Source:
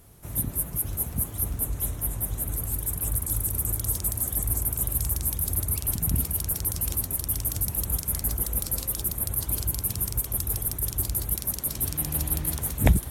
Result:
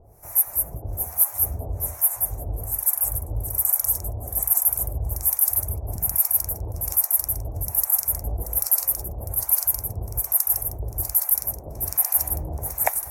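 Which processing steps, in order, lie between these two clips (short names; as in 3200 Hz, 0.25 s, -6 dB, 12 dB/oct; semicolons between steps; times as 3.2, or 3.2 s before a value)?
EQ curve 100 Hz 0 dB, 150 Hz -6 dB, 250 Hz -7 dB, 730 Hz +11 dB, 1300 Hz 0 dB, 2300 Hz -1 dB, 3300 Hz -18 dB, 5700 Hz +4 dB, 8500 Hz +1 dB, 15000 Hz +10 dB; harmonic tremolo 1.2 Hz, depth 100%, crossover 740 Hz; 1.02–2.2 doubler 12 ms -5 dB; gain +3.5 dB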